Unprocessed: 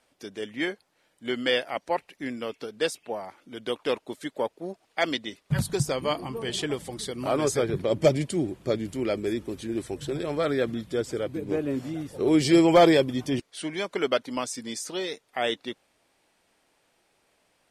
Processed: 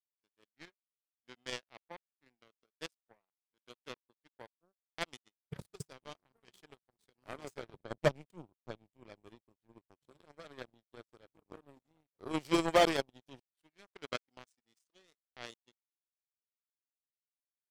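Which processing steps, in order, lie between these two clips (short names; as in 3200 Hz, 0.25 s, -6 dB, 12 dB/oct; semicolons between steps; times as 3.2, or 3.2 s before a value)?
power-law curve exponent 3; 7.76–9.89 tone controls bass +4 dB, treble -5 dB; gain -6 dB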